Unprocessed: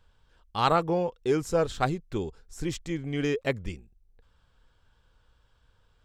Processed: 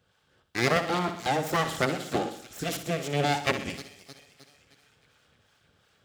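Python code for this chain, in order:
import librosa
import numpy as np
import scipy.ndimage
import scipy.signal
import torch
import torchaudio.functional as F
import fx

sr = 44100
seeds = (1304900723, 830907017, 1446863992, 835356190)

p1 = fx.hum_notches(x, sr, base_hz=60, count=5)
p2 = fx.echo_wet_highpass(p1, sr, ms=309, feedback_pct=52, hz=2400.0, wet_db=-9)
p3 = fx.harmonic_tremolo(p2, sr, hz=2.8, depth_pct=50, crossover_hz=550.0)
p4 = np.abs(p3)
p5 = fx.rider(p4, sr, range_db=10, speed_s=2.0)
p6 = p4 + (p5 * librosa.db_to_amplitude(2.5))
p7 = scipy.signal.sosfilt(scipy.signal.butter(2, 130.0, 'highpass', fs=sr, output='sos'), p6)
p8 = fx.notch(p7, sr, hz=970.0, q=5.9)
p9 = p8 + fx.echo_feedback(p8, sr, ms=62, feedback_pct=48, wet_db=-10.0, dry=0)
y = fx.band_squash(p9, sr, depth_pct=70, at=(0.76, 2.19))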